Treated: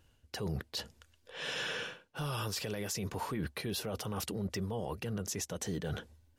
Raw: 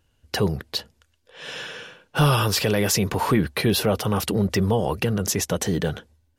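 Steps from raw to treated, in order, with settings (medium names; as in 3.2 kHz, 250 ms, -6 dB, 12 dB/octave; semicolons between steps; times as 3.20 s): dynamic bell 6.8 kHz, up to +5 dB, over -40 dBFS, Q 1.1; reverse; compression 16:1, threshold -32 dBFS, peak gain reduction 19.5 dB; reverse; peak limiter -27 dBFS, peak gain reduction 6 dB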